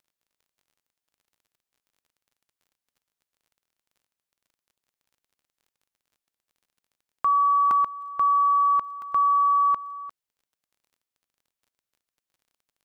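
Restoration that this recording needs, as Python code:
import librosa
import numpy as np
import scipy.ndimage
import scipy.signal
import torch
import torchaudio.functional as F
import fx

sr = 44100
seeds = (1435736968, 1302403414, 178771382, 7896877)

y = fx.fix_declick_ar(x, sr, threshold=6.5)
y = fx.fix_interpolate(y, sr, at_s=(4.78, 7.71, 9.02), length_ms=1.7)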